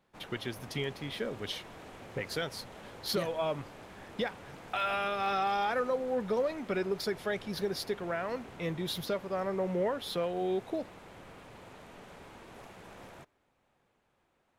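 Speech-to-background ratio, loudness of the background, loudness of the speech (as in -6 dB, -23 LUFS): 16.0 dB, -50.0 LUFS, -34.0 LUFS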